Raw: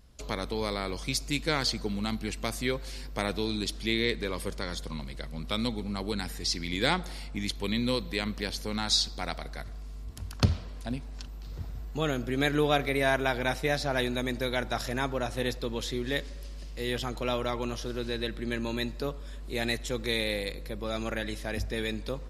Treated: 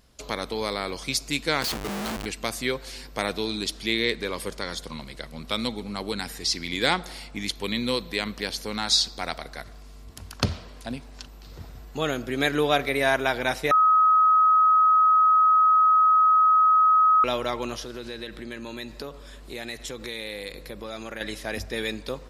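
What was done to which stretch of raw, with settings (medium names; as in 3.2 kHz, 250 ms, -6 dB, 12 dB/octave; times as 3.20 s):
1.62–2.26 s: Schmitt trigger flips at -41 dBFS
13.71–17.24 s: bleep 1.27 kHz -19 dBFS
17.82–21.21 s: compression, threshold -33 dBFS
whole clip: bass shelf 190 Hz -10 dB; trim +4.5 dB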